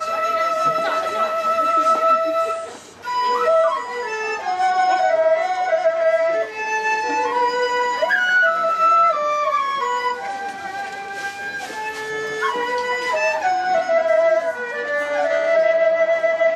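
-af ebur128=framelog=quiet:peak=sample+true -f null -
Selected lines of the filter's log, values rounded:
Integrated loudness:
  I:         -19.2 LUFS
  Threshold: -29.2 LUFS
Loudness range:
  LRA:         5.7 LU
  Threshold: -39.4 LUFS
  LRA low:   -23.4 LUFS
  LRA high:  -17.7 LUFS
Sample peak:
  Peak:       -7.0 dBFS
True peak:
  Peak:       -7.0 dBFS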